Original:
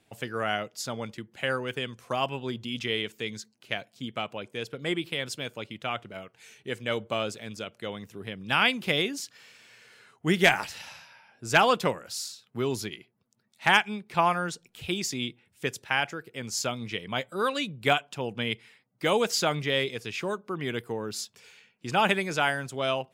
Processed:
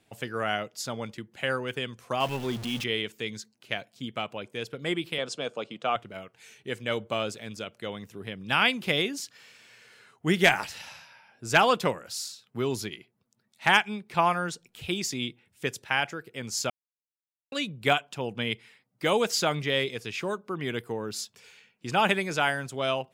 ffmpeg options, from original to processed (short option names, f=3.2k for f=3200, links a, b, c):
-filter_complex "[0:a]asettb=1/sr,asplit=3[a][b][c];[a]atrim=end=2.204[d];[b]atrim=start=2.2:end=2.84,asetpts=PTS-STARTPTS,afade=t=in:d=0.004:c=qsin,afade=t=out:st=0.636:d=0.004:c=qsin,aeval=exprs='val(0)+0.5*0.0188*sgn(val(0))':c=same[e];[c]atrim=start=2.836[f];[d][e]acrossfade=d=0.004:c1=hsin:c2=qsin[g];[g][f]acrossfade=d=0.004:c1=qsin:c2=hsin,asettb=1/sr,asplit=3[h][i][j];[h]atrim=end=5.184[k];[i]atrim=start=5.18:end=5.96,asetpts=PTS-STARTPTS,afade=t=in:d=0.004:c=qsin,afade=t=out:st=0.776:d=0.004:c=qsin,highpass=f=150:w=0.5412,highpass=f=150:w=1.3066,equalizer=f=480:t=q:w=4:g=7,equalizer=f=700:t=q:w=4:g=7,equalizer=f=1.2k:t=q:w=4:g=6,equalizer=f=2k:t=q:w=4:g=-5,lowpass=f=8.4k:w=0.5412,lowpass=f=8.4k:w=1.3066[l];[j]atrim=start=5.956[m];[k][l]acrossfade=d=0.004:c1=hsin:c2=qsin[n];[n][m]acrossfade=d=0.004:c1=qsin:c2=hsin,asplit=3[o][p][q];[o]atrim=end=16.7,asetpts=PTS-STARTPTS,afade=t=out:st=16.696:d=0.004:c=hsin[r];[p]atrim=start=16.7:end=17.52,asetpts=PTS-STARTPTS,volume=0[s];[q]atrim=start=17.52,asetpts=PTS-STARTPTS,afade=t=in:d=0.004:c=hsin[t];[r][s][t]concat=n=3:v=0:a=1"